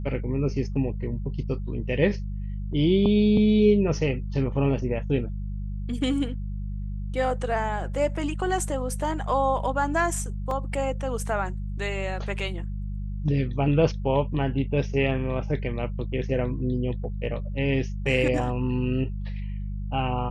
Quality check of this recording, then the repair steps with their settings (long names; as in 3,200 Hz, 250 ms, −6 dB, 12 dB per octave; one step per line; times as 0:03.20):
mains hum 50 Hz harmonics 4 −31 dBFS
0:10.51: drop-out 2.1 ms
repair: hum removal 50 Hz, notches 4
repair the gap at 0:10.51, 2.1 ms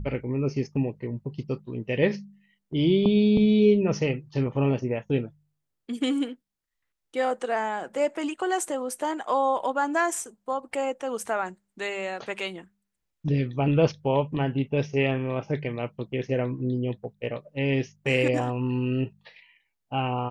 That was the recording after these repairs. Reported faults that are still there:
none of them is left